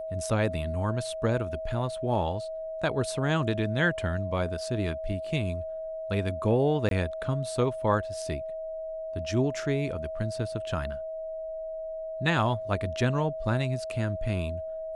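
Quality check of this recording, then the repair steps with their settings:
whine 640 Hz -33 dBFS
6.89–6.91 s: dropout 22 ms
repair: band-stop 640 Hz, Q 30; interpolate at 6.89 s, 22 ms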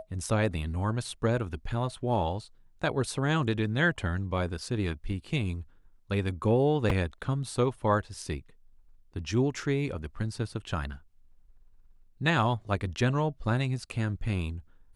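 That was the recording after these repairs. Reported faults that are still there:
nothing left

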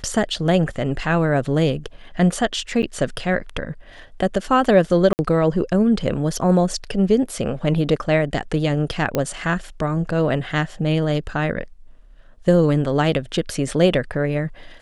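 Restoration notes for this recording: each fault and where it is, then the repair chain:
2.82–2.83 s: dropout 8.9 ms
5.13–5.19 s: dropout 59 ms
9.15 s: pop -7 dBFS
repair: de-click; interpolate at 2.82 s, 8.9 ms; interpolate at 5.13 s, 59 ms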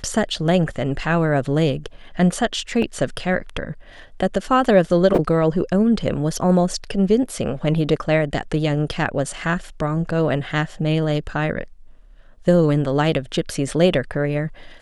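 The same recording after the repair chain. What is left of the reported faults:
nothing left

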